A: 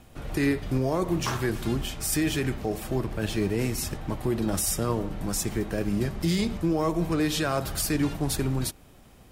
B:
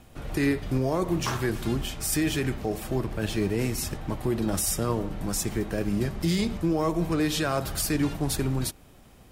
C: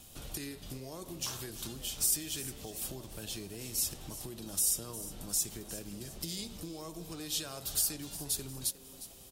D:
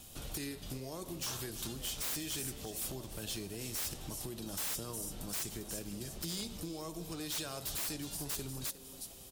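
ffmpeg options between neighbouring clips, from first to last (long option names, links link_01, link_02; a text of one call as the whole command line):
ffmpeg -i in.wav -af anull out.wav
ffmpeg -i in.wav -filter_complex "[0:a]acompressor=threshold=-35dB:ratio=6,aexciter=amount=3.2:drive=8.1:freq=2900,asplit=5[link_01][link_02][link_03][link_04][link_05];[link_02]adelay=357,afreqshift=130,volume=-14.5dB[link_06];[link_03]adelay=714,afreqshift=260,volume=-21.6dB[link_07];[link_04]adelay=1071,afreqshift=390,volume=-28.8dB[link_08];[link_05]adelay=1428,afreqshift=520,volume=-35.9dB[link_09];[link_01][link_06][link_07][link_08][link_09]amix=inputs=5:normalize=0,volume=-7dB" out.wav
ffmpeg -i in.wav -af "aeval=exprs='0.0224*(abs(mod(val(0)/0.0224+3,4)-2)-1)':channel_layout=same,volume=1dB" out.wav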